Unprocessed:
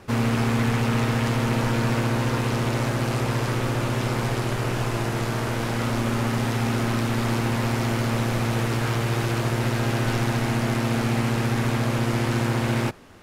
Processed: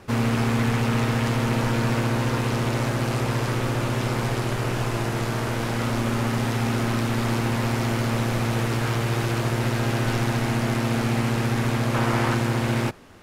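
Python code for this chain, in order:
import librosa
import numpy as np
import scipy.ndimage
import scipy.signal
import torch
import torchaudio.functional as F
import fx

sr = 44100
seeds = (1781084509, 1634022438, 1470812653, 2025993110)

y = fx.peak_eq(x, sr, hz=1100.0, db=6.5, octaves=1.8, at=(11.94, 12.35))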